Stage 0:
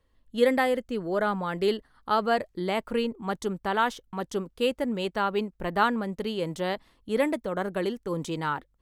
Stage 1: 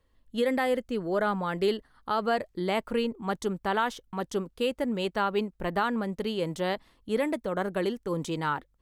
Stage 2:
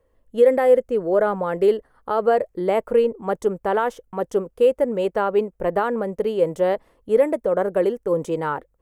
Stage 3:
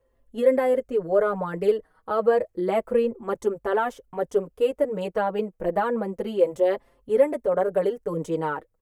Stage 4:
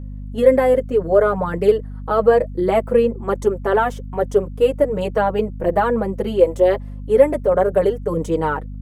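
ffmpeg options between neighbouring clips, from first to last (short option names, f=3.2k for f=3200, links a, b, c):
-af "alimiter=limit=-16.5dB:level=0:latency=1:release=142"
-af "equalizer=f=250:t=o:w=1:g=-3,equalizer=f=500:t=o:w=1:g=12,equalizer=f=4k:t=o:w=1:g=-11,volume=2dB"
-filter_complex "[0:a]asplit=2[a][b];[b]adelay=5.4,afreqshift=0.3[c];[a][c]amix=inputs=2:normalize=1"
-af "aeval=exprs='val(0)+0.0158*(sin(2*PI*50*n/s)+sin(2*PI*2*50*n/s)/2+sin(2*PI*3*50*n/s)/3+sin(2*PI*4*50*n/s)/4+sin(2*PI*5*50*n/s)/5)':c=same,volume=6.5dB"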